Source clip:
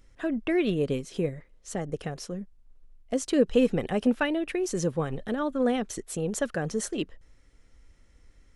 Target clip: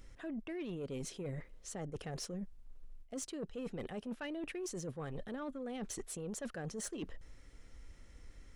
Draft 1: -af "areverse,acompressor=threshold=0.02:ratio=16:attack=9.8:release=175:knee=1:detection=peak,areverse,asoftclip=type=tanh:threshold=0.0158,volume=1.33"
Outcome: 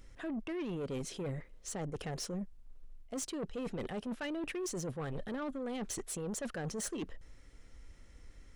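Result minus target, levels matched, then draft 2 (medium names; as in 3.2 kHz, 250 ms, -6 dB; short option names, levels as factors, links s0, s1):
compression: peak gain reduction -5.5 dB
-af "areverse,acompressor=threshold=0.01:ratio=16:attack=9.8:release=175:knee=1:detection=peak,areverse,asoftclip=type=tanh:threshold=0.0158,volume=1.33"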